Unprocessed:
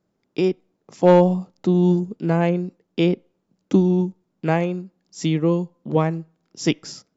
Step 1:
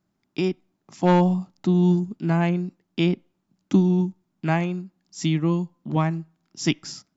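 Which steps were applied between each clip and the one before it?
bell 480 Hz -15 dB 0.52 oct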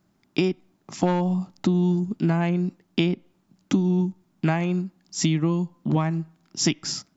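compressor 12:1, threshold -26 dBFS, peak gain reduction 14.5 dB; gain +8 dB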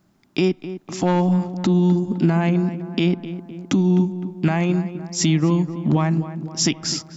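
limiter -14 dBFS, peak gain reduction 7.5 dB; darkening echo 0.256 s, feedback 62%, low-pass 1900 Hz, level -12 dB; gain +5 dB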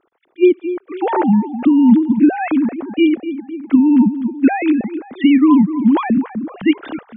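sine-wave speech; attack slew limiter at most 580 dB/s; gain +6 dB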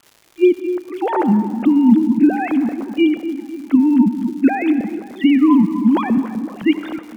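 crackle 230/s -33 dBFS; reverb RT60 1.7 s, pre-delay 58 ms, DRR 12.5 dB; gain -1.5 dB

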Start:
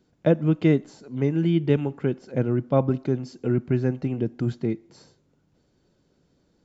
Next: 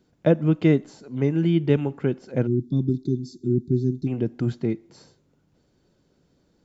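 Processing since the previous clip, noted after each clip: spectral gain 2.47–4.07, 390–3400 Hz -29 dB; gain +1 dB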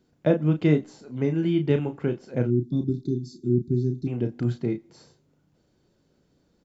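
doubler 33 ms -7 dB; gain -2.5 dB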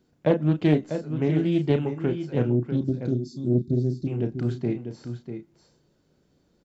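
echo 0.645 s -9 dB; Doppler distortion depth 0.25 ms

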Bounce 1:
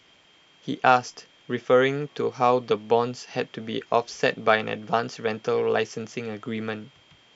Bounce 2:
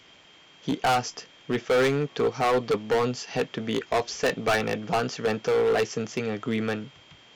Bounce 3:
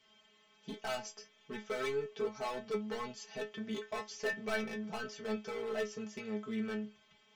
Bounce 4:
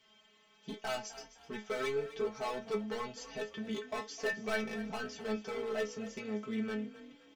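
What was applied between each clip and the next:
overloaded stage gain 22.5 dB; gain +3.5 dB
metallic resonator 210 Hz, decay 0.22 s, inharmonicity 0.002; gain -1.5 dB
frequency-shifting echo 0.257 s, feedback 32%, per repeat +33 Hz, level -15.5 dB; gain +1 dB

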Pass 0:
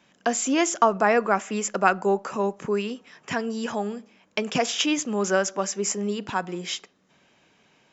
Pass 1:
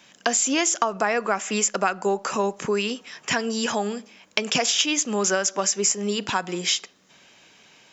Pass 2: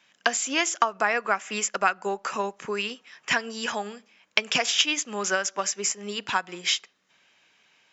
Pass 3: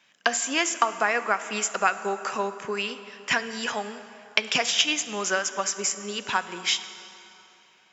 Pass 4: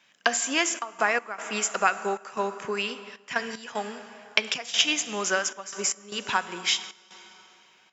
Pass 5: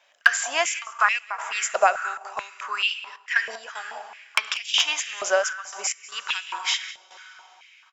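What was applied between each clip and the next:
EQ curve 180 Hz 0 dB, 1300 Hz +4 dB, 5000 Hz +11 dB; compressor 5:1, threshold -21 dBFS, peak gain reduction 11 dB; gain +2 dB
bell 1900 Hz +9 dB 2.7 oct; upward expander 1.5:1, over -33 dBFS; gain -5 dB
plate-style reverb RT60 3.1 s, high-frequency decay 0.7×, DRR 11 dB
step gate "xxxx.x.xxxx." 76 bpm -12 dB
one-sided fold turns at -8.5 dBFS; echo 0.192 s -20 dB; stepped high-pass 4.6 Hz 620–2800 Hz; gain -1 dB

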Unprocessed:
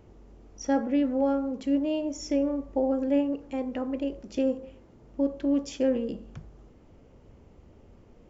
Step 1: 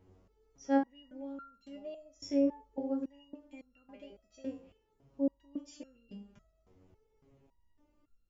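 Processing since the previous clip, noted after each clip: stepped resonator 3.6 Hz 93–1400 Hz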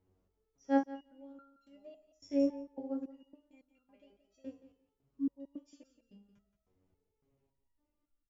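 feedback echo 0.174 s, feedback 15%, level -11 dB; spectral repair 5.03–5.28, 490–980 Hz; upward expander 1.5:1, over -48 dBFS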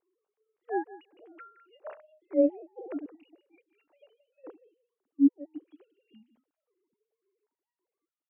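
sine-wave speech; gain +6 dB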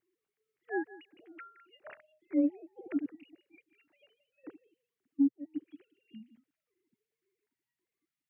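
graphic EQ 125/250/500/1000/2000 Hz +12/+7/-11/-8/+9 dB; compressor 12:1, threshold -23 dBFS, peak gain reduction 13 dB

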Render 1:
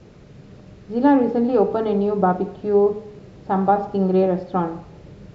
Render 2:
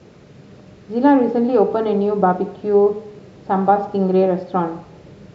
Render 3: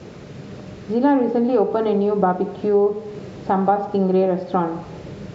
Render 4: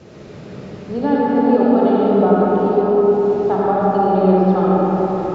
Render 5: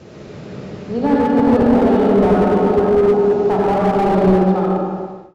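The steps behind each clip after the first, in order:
HPF 150 Hz 6 dB/oct; gain +3 dB
compressor 2:1, threshold -29 dBFS, peak gain reduction 11.5 dB; gain +7 dB
reverb RT60 4.8 s, pre-delay 30 ms, DRR -7 dB; gain -4 dB
ending faded out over 1.06 s; slew limiter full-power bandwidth 110 Hz; gain +2 dB

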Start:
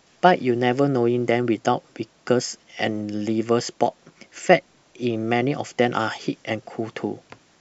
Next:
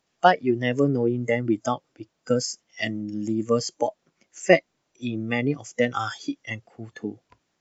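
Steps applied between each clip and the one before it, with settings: spectral noise reduction 17 dB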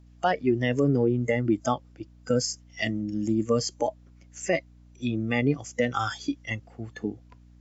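low shelf 64 Hz +9.5 dB; limiter -13 dBFS, peak gain reduction 11.5 dB; hum 60 Hz, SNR 25 dB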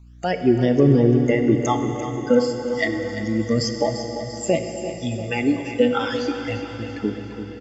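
phaser stages 12, 0.3 Hz, lowest notch 110–2500 Hz; feedback echo 0.343 s, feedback 56%, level -11.5 dB; plate-style reverb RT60 4.9 s, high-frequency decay 1×, DRR 5.5 dB; gain +6.5 dB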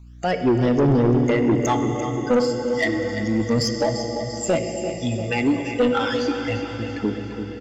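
soft clip -15 dBFS, distortion -11 dB; gain +2.5 dB

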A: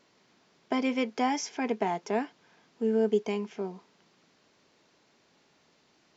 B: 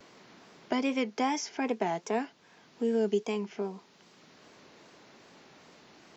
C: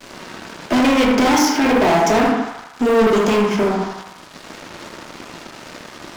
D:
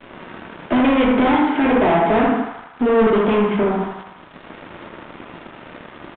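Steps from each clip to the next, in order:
dynamic EQ 6500 Hz, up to +4 dB, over -51 dBFS, Q 0.75; vibrato 2.5 Hz 80 cents; three-band squash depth 40%; gain -1 dB
shoebox room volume 430 m³, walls furnished, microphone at 2.7 m; sample leveller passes 5; narrowing echo 79 ms, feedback 66%, band-pass 1200 Hz, level -3 dB
air absorption 260 m; downsampling 8000 Hz

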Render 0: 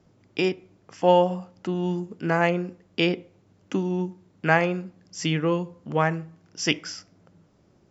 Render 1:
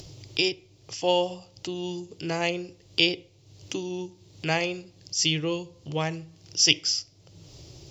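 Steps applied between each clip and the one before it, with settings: EQ curve 140 Hz 0 dB, 210 Hz -22 dB, 310 Hz -6 dB, 880 Hz -10 dB, 1500 Hz -16 dB, 2800 Hz +3 dB, 4700 Hz +10 dB, 9200 Hz +3 dB; upward compressor, threshold -35 dBFS; gain +2.5 dB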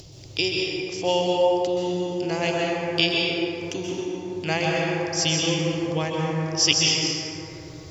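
plate-style reverb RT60 3.9 s, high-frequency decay 0.3×, pre-delay 0.115 s, DRR -3.5 dB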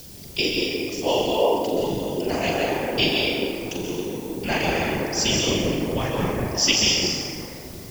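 whisperiser; flutter echo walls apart 7.2 m, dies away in 0.36 s; added noise blue -45 dBFS

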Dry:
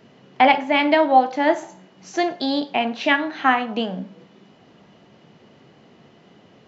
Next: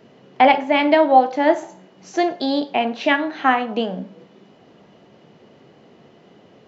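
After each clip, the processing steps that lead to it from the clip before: bell 470 Hz +5 dB 1.5 oct; gain -1 dB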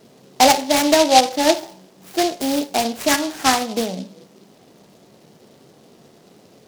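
noise-modulated delay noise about 4000 Hz, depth 0.092 ms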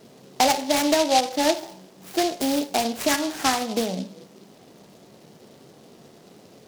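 compressor 2:1, threshold -21 dBFS, peak gain reduction 8 dB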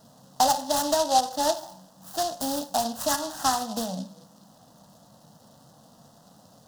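fixed phaser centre 940 Hz, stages 4

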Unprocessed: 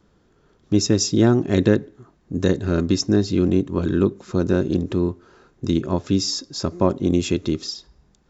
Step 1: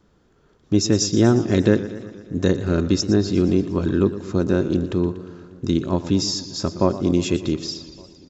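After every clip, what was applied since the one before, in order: outdoor echo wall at 200 m, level -28 dB; warbling echo 0.118 s, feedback 65%, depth 85 cents, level -14.5 dB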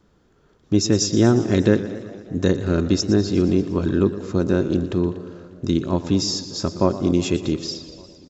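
frequency-shifting echo 0.202 s, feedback 46%, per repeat +80 Hz, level -21 dB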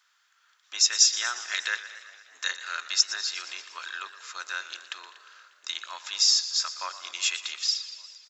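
octaver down 2 oct, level -1 dB; HPF 1400 Hz 24 dB/oct; gain +4.5 dB

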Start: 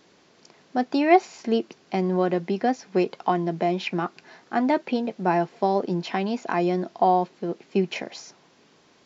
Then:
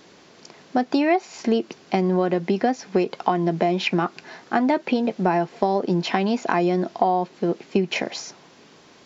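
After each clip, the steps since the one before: compressor 6:1, threshold -24 dBFS, peak gain reduction 13 dB; gain +7.5 dB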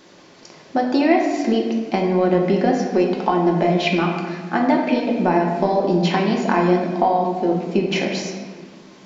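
reverb RT60 1.5 s, pre-delay 3 ms, DRR 0 dB

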